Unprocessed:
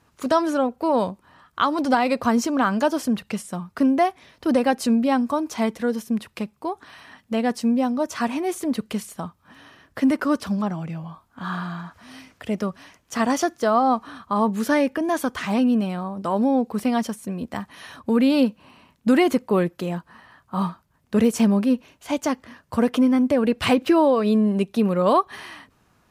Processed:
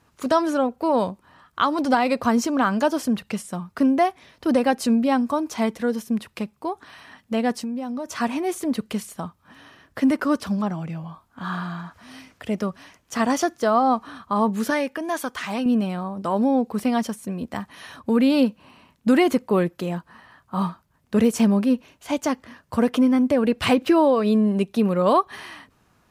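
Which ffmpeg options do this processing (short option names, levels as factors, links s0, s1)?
-filter_complex "[0:a]asettb=1/sr,asplit=3[s0][s1][s2];[s0]atrim=end=7.584[s3];[s1]atrim=start=7.58:end=8.12,asetpts=PTS-STARTPTS,afade=t=in:d=0.004:c=qsin,afade=t=out:st=0.536:d=0.004:c=qsin,acompressor=threshold=0.0562:ratio=12:attack=3.2:release=140:knee=1:detection=peak[s4];[s2]atrim=start=8.116[s5];[s3][s4]acrossfade=d=0.004:c1=hsin:c2=qsin[s6];[s6][s5]acrossfade=d=0.004:c1=qsin:c2=hsin,asettb=1/sr,asplit=3[s7][s8][s9];[s7]atrim=end=14.704[s10];[s8]atrim=start=14.7:end=15.66,asetpts=PTS-STARTPTS,afade=t=in:d=0.004:c=qsin,afade=t=out:st=0.956:d=0.004:c=qsin,lowshelf=f=460:g=-9[s11];[s9]atrim=start=15.656[s12];[s10][s11]acrossfade=d=0.004:c1=hsin:c2=qsin[s13];[s13][s12]acrossfade=d=0.004:c1=qsin:c2=hsin"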